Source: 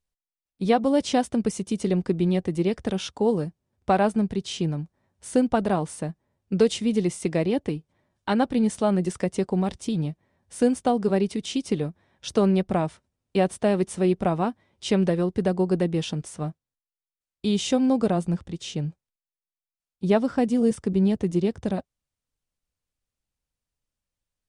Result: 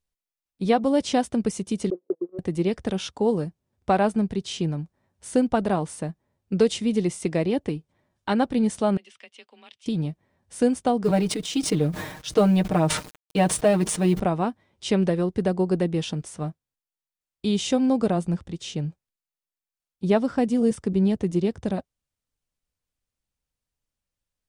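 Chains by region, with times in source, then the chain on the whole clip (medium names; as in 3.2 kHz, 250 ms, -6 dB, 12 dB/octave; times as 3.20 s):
1.90–2.39 s: one-bit delta coder 16 kbps, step -23 dBFS + Butterworth band-pass 410 Hz, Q 2.5 + gate -28 dBFS, range -36 dB
8.97–9.86 s: band-pass filter 2.9 kHz, Q 3.4 + frequency shift +27 Hz
11.03–14.20 s: companding laws mixed up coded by A + comb 6.5 ms, depth 90% + decay stretcher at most 66 dB/s
whole clip: none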